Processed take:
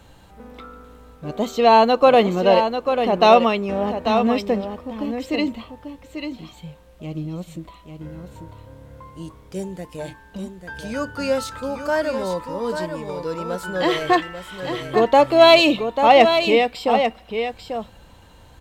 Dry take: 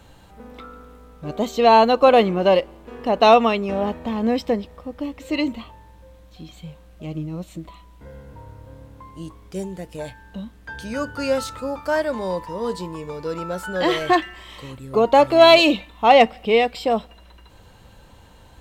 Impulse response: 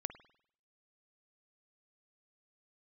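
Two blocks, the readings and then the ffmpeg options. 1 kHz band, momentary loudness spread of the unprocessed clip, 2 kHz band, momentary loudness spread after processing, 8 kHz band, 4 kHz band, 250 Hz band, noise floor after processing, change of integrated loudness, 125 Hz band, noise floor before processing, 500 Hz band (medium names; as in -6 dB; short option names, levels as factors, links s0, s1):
+0.5 dB, 22 LU, +0.5 dB, 21 LU, +0.5 dB, +0.5 dB, +1.0 dB, -48 dBFS, 0.0 dB, +0.5 dB, -48 dBFS, +0.5 dB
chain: -af "aecho=1:1:842:0.422"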